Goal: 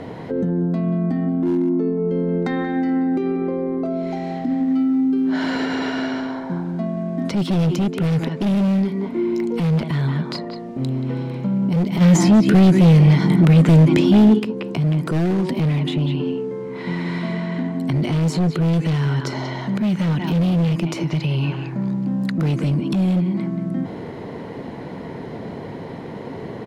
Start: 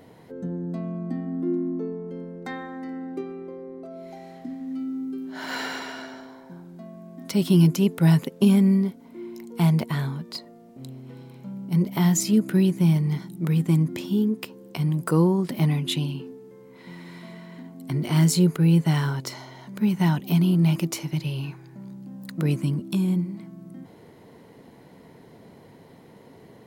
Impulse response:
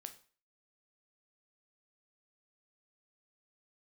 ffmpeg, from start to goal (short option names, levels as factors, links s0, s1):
-filter_complex "[0:a]aemphasis=mode=reproduction:type=50fm,asplit=2[s0][s1];[s1]adelay=180,highpass=300,lowpass=3400,asoftclip=type=hard:threshold=0.133,volume=0.316[s2];[s0][s2]amix=inputs=2:normalize=0,aeval=exprs='0.447*sin(PI/2*2.24*val(0)/0.447)':c=same,highshelf=f=10000:g=-10,asoftclip=type=hard:threshold=0.316,acrossover=split=520|2100[s3][s4][s5];[s3]acompressor=threshold=0.0891:ratio=4[s6];[s4]acompressor=threshold=0.0126:ratio=4[s7];[s5]acompressor=threshold=0.0126:ratio=4[s8];[s6][s7][s8]amix=inputs=3:normalize=0,alimiter=limit=0.1:level=0:latency=1:release=99,asplit=3[s9][s10][s11];[s9]afade=t=out:st=12:d=0.02[s12];[s10]acontrast=84,afade=t=in:st=12:d=0.02,afade=t=out:st=14.38:d=0.02[s13];[s11]afade=t=in:st=14.38:d=0.02[s14];[s12][s13][s14]amix=inputs=3:normalize=0,volume=2"